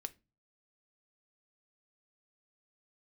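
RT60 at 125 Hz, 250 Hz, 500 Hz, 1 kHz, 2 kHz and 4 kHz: 0.55, 0.45, 0.30, 0.25, 0.25, 0.20 s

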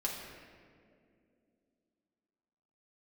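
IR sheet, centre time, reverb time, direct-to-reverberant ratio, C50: 76 ms, 2.4 s, -3.0 dB, 2.5 dB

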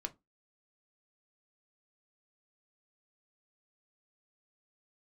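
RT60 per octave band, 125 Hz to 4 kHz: 0.20, 0.30, 0.20, 0.20, 0.15, 0.15 s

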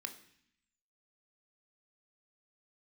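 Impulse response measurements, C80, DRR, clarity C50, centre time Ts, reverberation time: 15.5 dB, 6.5 dB, 12.5 dB, 9 ms, 0.65 s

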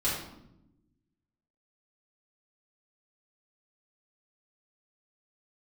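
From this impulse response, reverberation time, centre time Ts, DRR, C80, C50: 0.85 s, 52 ms, -10.0 dB, 5.5 dB, 2.0 dB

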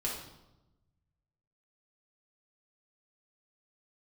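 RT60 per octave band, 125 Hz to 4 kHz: 1.9, 1.3, 1.0, 0.90, 0.70, 0.75 s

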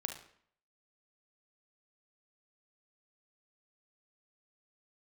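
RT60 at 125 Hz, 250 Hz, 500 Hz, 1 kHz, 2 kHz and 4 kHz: 0.65, 0.65, 0.60, 0.60, 0.60, 0.50 s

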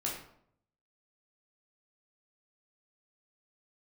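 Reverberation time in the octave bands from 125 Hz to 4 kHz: 0.90, 0.75, 0.70, 0.65, 0.50, 0.45 s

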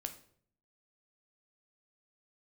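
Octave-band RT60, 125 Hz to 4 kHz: 0.85, 0.75, 0.65, 0.50, 0.45, 0.45 s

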